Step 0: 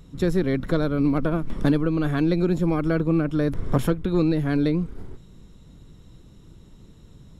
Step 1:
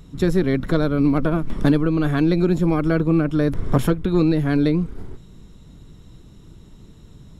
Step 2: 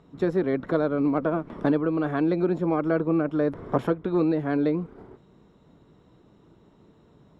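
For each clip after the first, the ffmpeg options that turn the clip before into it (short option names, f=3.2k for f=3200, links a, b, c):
-af "bandreject=f=520:w=16,volume=3.5dB"
-af "bandpass=f=690:t=q:w=0.82:csg=0"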